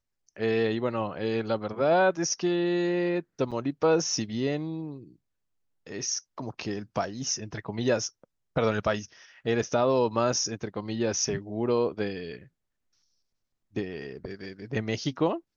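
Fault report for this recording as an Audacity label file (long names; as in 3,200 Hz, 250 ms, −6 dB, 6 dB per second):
3.510000	3.520000	drop-out 7 ms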